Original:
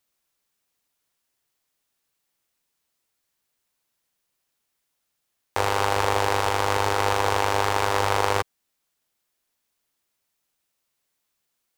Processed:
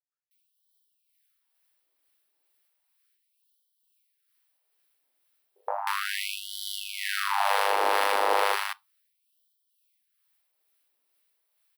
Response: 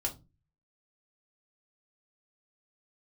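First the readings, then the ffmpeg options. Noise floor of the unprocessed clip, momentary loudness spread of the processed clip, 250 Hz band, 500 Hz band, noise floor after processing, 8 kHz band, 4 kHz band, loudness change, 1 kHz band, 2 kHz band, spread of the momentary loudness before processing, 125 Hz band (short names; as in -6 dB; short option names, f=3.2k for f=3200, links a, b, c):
-78 dBFS, 11 LU, -12.5 dB, -6.0 dB, -76 dBFS, -5.0 dB, -1.5 dB, -4.0 dB, -3.5 dB, -2.0 dB, 4 LU, under -40 dB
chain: -filter_complex "[0:a]equalizer=f=6.8k:t=o:w=0.53:g=-12,bandreject=f=50:t=h:w=6,bandreject=f=100:t=h:w=6,bandreject=f=150:t=h:w=6,bandreject=f=200:t=h:w=6,bandreject=f=250:t=h:w=6,bandreject=f=300:t=h:w=6,bandreject=f=350:t=h:w=6,bandreject=f=400:t=h:w=6,alimiter=limit=-9.5dB:level=0:latency=1:release=11,aexciter=amount=1.5:drive=1.6:freq=10k,tremolo=f=2.2:d=0.43,acrossover=split=180|1100[a][b][c];[b]adelay=120[d];[c]adelay=310[e];[a][d][e]amix=inputs=3:normalize=0,asplit=2[f][g];[1:a]atrim=start_sample=2205[h];[g][h]afir=irnorm=-1:irlink=0,volume=-15.5dB[i];[f][i]amix=inputs=2:normalize=0,afftfilt=real='re*gte(b*sr/1024,210*pow(3000/210,0.5+0.5*sin(2*PI*0.34*pts/sr)))':imag='im*gte(b*sr/1024,210*pow(3000/210,0.5+0.5*sin(2*PI*0.34*pts/sr)))':win_size=1024:overlap=0.75,volume=2dB"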